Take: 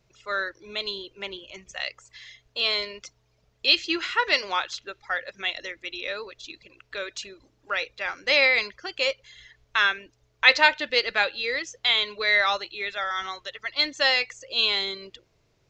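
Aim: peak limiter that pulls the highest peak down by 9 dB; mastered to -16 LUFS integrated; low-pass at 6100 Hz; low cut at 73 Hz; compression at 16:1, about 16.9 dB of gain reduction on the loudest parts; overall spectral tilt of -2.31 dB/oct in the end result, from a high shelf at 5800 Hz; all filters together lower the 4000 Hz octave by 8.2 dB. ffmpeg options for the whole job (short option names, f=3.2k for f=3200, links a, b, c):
-af "highpass=73,lowpass=6.1k,equalizer=f=4k:t=o:g=-8.5,highshelf=f=5.8k:g=-3.5,acompressor=threshold=-30dB:ratio=16,volume=21.5dB,alimiter=limit=-3.5dB:level=0:latency=1"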